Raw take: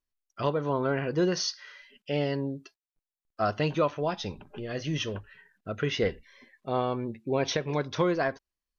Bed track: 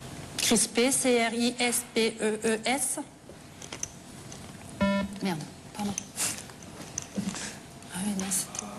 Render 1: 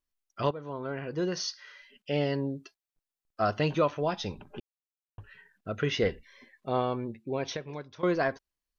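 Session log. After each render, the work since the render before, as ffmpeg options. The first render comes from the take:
ffmpeg -i in.wav -filter_complex "[0:a]asplit=5[link_01][link_02][link_03][link_04][link_05];[link_01]atrim=end=0.51,asetpts=PTS-STARTPTS,afade=type=out:start_time=0.506:duration=0.004:curve=hsin:silence=0.237137[link_06];[link_02]atrim=start=0.51:end=4.6,asetpts=PTS-STARTPTS,afade=type=in:duration=1.67:silence=0.237137,afade=type=out:start_time=4.086:duration=0.004:curve=hsin[link_07];[link_03]atrim=start=4.6:end=5.18,asetpts=PTS-STARTPTS,volume=0[link_08];[link_04]atrim=start=5.18:end=8.03,asetpts=PTS-STARTPTS,afade=type=in:duration=0.004:curve=hsin,afade=type=out:start_time=1.58:duration=1.27:silence=0.112202[link_09];[link_05]atrim=start=8.03,asetpts=PTS-STARTPTS,afade=type=in:duration=0.004:curve=hsin:silence=0.112202[link_10];[link_06][link_07][link_08][link_09][link_10]concat=n=5:v=0:a=1" out.wav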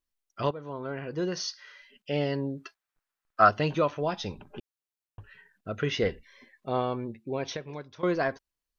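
ffmpeg -i in.wav -filter_complex "[0:a]asettb=1/sr,asplit=3[link_01][link_02][link_03];[link_01]atrim=end=2.574[link_04];[link_02]atrim=start=2.57:end=3.49,asetpts=PTS-STARTPTS,afade=type=in:duration=0.004:curve=qsin,afade=type=out:start_time=0.916:duration=0.004:curve=qsin,equalizer=frequency=1400:width=0.79:gain=13[link_05];[link_03]atrim=start=3.486[link_06];[link_04][link_05]acrossfade=duration=0.004:curve1=hsin:curve2=qsin[link_07];[link_07][link_06]acrossfade=duration=0.004:curve1=qsin:curve2=hsin" out.wav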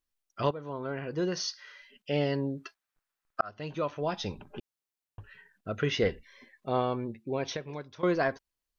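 ffmpeg -i in.wav -filter_complex "[0:a]asplit=2[link_01][link_02];[link_01]atrim=end=3.41,asetpts=PTS-STARTPTS,afade=type=out:start_time=3.406:duration=0.004:curve=hsin[link_03];[link_02]atrim=start=3.41,asetpts=PTS-STARTPTS,afade=type=in:duration=0.83[link_04];[link_03][link_04]concat=n=2:v=0:a=1" out.wav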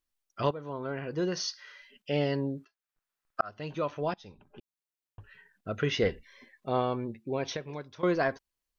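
ffmpeg -i in.wav -filter_complex "[0:a]asplit=3[link_01][link_02][link_03];[link_01]atrim=end=2.65,asetpts=PTS-STARTPTS,afade=type=out:start_time=2.646:duration=0.004:curve=hsin:silence=0.0630957[link_04];[link_02]atrim=start=2.65:end=4.14,asetpts=PTS-STARTPTS,afade=type=in:duration=0.79:curve=qsin:silence=0.0630957,afade=type=out:start_time=1.486:duration=0.004:curve=hsin:silence=0.112202[link_05];[link_03]atrim=start=4.14,asetpts=PTS-STARTPTS,afade=type=in:duration=1.54:silence=0.112202[link_06];[link_04][link_05][link_06]concat=n=3:v=0:a=1" out.wav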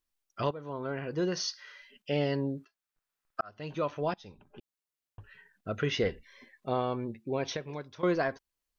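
ffmpeg -i in.wav -af "alimiter=limit=-18.5dB:level=0:latency=1:release=348" out.wav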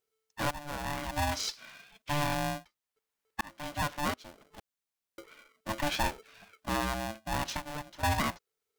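ffmpeg -i in.wav -af "asoftclip=type=tanh:threshold=-19.5dB,aeval=exprs='val(0)*sgn(sin(2*PI*440*n/s))':channel_layout=same" out.wav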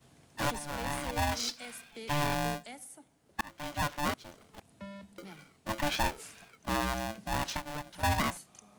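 ffmpeg -i in.wav -i bed.wav -filter_complex "[1:a]volume=-19.5dB[link_01];[0:a][link_01]amix=inputs=2:normalize=0" out.wav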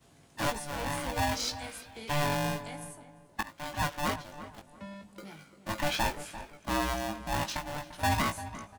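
ffmpeg -i in.wav -filter_complex "[0:a]asplit=2[link_01][link_02];[link_02]adelay=19,volume=-5.5dB[link_03];[link_01][link_03]amix=inputs=2:normalize=0,asplit=2[link_04][link_05];[link_05]adelay=345,lowpass=frequency=1700:poles=1,volume=-12.5dB,asplit=2[link_06][link_07];[link_07]adelay=345,lowpass=frequency=1700:poles=1,volume=0.3,asplit=2[link_08][link_09];[link_09]adelay=345,lowpass=frequency=1700:poles=1,volume=0.3[link_10];[link_04][link_06][link_08][link_10]amix=inputs=4:normalize=0" out.wav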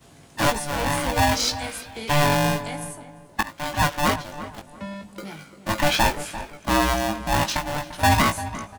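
ffmpeg -i in.wav -af "volume=10dB" out.wav

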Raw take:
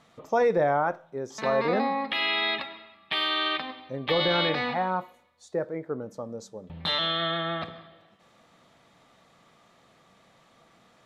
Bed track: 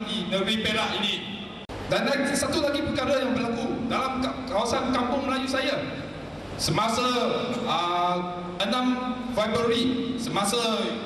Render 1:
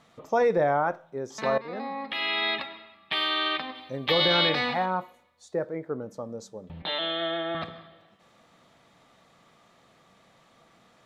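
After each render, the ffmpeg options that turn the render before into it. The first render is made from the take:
ffmpeg -i in.wav -filter_complex "[0:a]asettb=1/sr,asplit=3[link_01][link_02][link_03];[link_01]atrim=end=3.754[link_04];[link_02]atrim=start=3.75:end=4.86,asetpts=PTS-STARTPTS,afade=type=in:duration=0.004:curve=qsin,afade=type=out:start_time=1.106:duration=0.004:curve=qsin,highshelf=frequency=3700:gain=10[link_05];[link_03]atrim=start=4.856[link_06];[link_04][link_05]acrossfade=duration=0.004:curve1=hsin:curve2=qsin[link_07];[link_07][link_06]acrossfade=duration=0.004:curve1=qsin:curve2=hsin,asettb=1/sr,asplit=3[link_08][link_09][link_10];[link_08]atrim=end=6.824[link_11];[link_09]atrim=start=6.82:end=7.55,asetpts=PTS-STARTPTS,afade=type=in:duration=0.004:curve=qsin,afade=type=out:start_time=0.726:duration=0.004:curve=qsin,highpass=300,equalizer=frequency=330:width_type=q:width=4:gain=5,equalizer=frequency=680:width_type=q:width=4:gain=3,equalizer=frequency=1200:width_type=q:width=4:gain=-9,equalizer=frequency=1900:width_type=q:width=4:gain=-3,lowpass=frequency=3400:width=0.5412,lowpass=frequency=3400:width=1.3066[link_12];[link_10]atrim=start=7.546[link_13];[link_11][link_12]acrossfade=duration=0.004:curve1=hsin:curve2=qsin[link_14];[link_14][link_13]acrossfade=duration=0.004:curve1=qsin:curve2=hsin,asplit=2[link_15][link_16];[link_15]atrim=end=1.58,asetpts=PTS-STARTPTS,afade=type=out:start_time=1.576:duration=0.004:curve=hsin:silence=0.141254[link_17];[link_16]atrim=start=1.58,asetpts=PTS-STARTPTS,afade=type=in:duration=0.9:silence=0.141254[link_18];[link_17][link_18]concat=n=2:v=0:a=1" out.wav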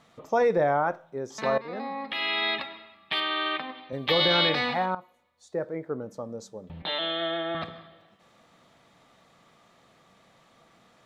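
ffmpeg -i in.wav -filter_complex "[0:a]asettb=1/sr,asplit=3[link_01][link_02][link_03];[link_01]atrim=end=3.204[link_04];[link_02]atrim=start=3.2:end=3.93,asetpts=PTS-STARTPTS,afade=type=in:duration=0.004:curve=qsin,afade=type=out:start_time=0.726:duration=0.004:curve=qsin,highpass=130,lowpass=3100[link_05];[link_03]atrim=start=3.926[link_06];[link_04][link_05]acrossfade=duration=0.004:curve1=hsin:curve2=qsin[link_07];[link_07][link_06]acrossfade=duration=0.004:curve1=qsin:curve2=hsin,asplit=2[link_08][link_09];[link_08]atrim=end=4.95,asetpts=PTS-STARTPTS,afade=type=out:start_time=4.946:duration=0.004:curve=hsin:silence=0.211349[link_10];[link_09]atrim=start=4.95,asetpts=PTS-STARTPTS,afade=type=in:duration=0.78:silence=0.211349[link_11];[link_10][link_11]concat=n=2:v=0:a=1" out.wav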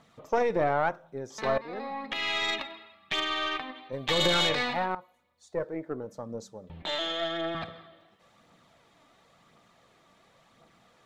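ffmpeg -i in.wav -af "aphaser=in_gain=1:out_gain=1:delay=3.5:decay=0.35:speed=0.94:type=triangular,aeval=exprs='(tanh(6.31*val(0)+0.55)-tanh(0.55))/6.31':channel_layout=same" out.wav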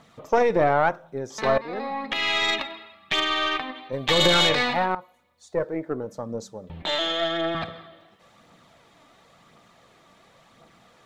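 ffmpeg -i in.wav -af "volume=6dB" out.wav

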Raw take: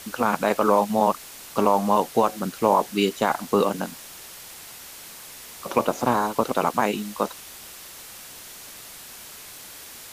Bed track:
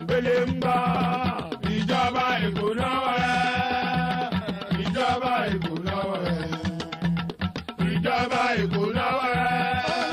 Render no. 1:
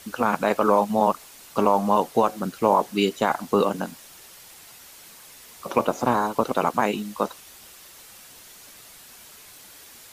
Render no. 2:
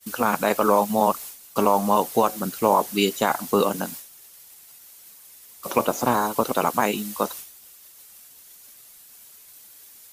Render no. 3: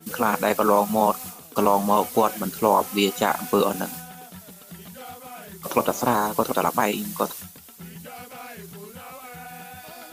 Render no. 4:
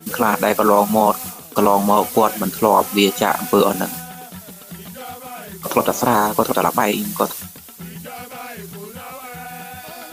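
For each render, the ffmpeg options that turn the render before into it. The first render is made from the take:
ffmpeg -i in.wav -af "afftdn=noise_reduction=6:noise_floor=-42" out.wav
ffmpeg -i in.wav -af "agate=range=-33dB:threshold=-38dB:ratio=3:detection=peak,aemphasis=mode=production:type=50kf" out.wav
ffmpeg -i in.wav -i bed.wav -filter_complex "[1:a]volume=-17dB[link_01];[0:a][link_01]amix=inputs=2:normalize=0" out.wav
ffmpeg -i in.wav -af "volume=6.5dB,alimiter=limit=-2dB:level=0:latency=1" out.wav

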